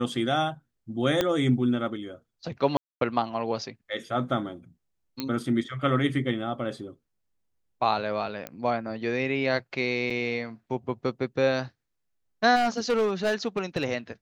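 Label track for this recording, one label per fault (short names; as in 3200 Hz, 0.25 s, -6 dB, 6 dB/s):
1.210000	1.210000	pop -9 dBFS
2.770000	3.010000	gap 0.242 s
5.200000	5.200000	pop -15 dBFS
8.470000	8.470000	pop -18 dBFS
10.100000	10.110000	gap 5 ms
12.550000	13.850000	clipped -20 dBFS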